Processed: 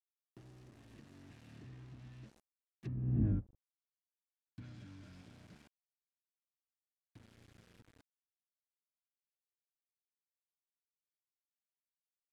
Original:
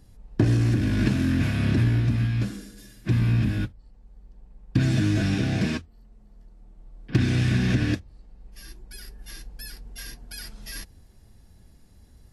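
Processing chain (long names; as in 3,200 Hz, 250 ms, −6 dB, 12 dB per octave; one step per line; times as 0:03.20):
source passing by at 0:03.27, 26 m/s, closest 1.7 metres
centre clipping without the shift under −55 dBFS
treble cut that deepens with the level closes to 540 Hz, closed at −33 dBFS
level −4 dB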